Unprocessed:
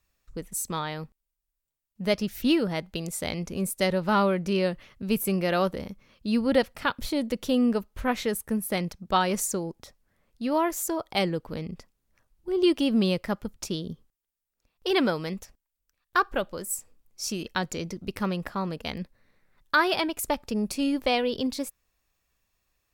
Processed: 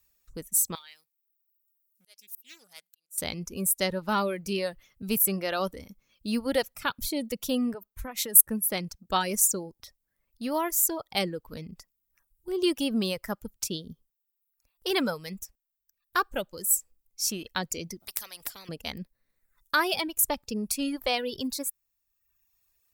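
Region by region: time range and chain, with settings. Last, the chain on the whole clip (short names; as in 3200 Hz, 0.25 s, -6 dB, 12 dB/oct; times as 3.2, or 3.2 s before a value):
0.75–3.18 differentiator + auto swell 0.651 s + Doppler distortion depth 0.28 ms
7.74–8.41 compressor 20:1, threshold -28 dBFS + high shelf 6000 Hz +8.5 dB + three-band expander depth 70%
18–18.69 notch 2700 Hz, Q 21 + spectral compressor 4:1
whole clip: high shelf 9400 Hz +9.5 dB; reverb removal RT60 1.1 s; high shelf 4500 Hz +8 dB; gain -3.5 dB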